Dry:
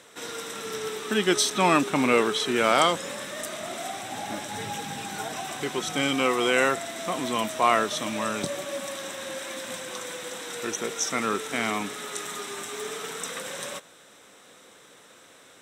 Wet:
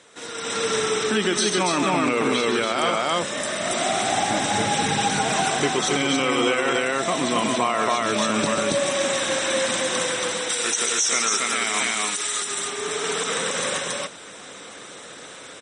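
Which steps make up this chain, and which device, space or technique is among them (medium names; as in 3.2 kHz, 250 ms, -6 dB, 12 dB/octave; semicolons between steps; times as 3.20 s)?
10.49–12.42 s: tilt EQ +3.5 dB/octave; loudspeakers at several distances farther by 46 m -8 dB, 95 m -2 dB; low-bitrate web radio (level rider gain up to 10 dB; peak limiter -11 dBFS, peak gain reduction 10 dB; MP3 40 kbps 44.1 kHz)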